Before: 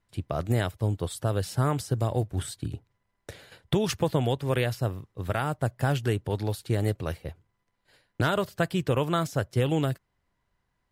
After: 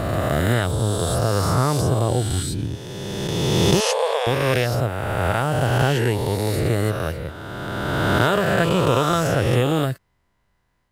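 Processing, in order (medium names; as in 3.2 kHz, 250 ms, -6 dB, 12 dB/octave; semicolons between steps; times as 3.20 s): reverse spectral sustain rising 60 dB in 2.65 s; 3.80–4.27 s: brick-wall FIR band-pass 420–12000 Hz; trim +3.5 dB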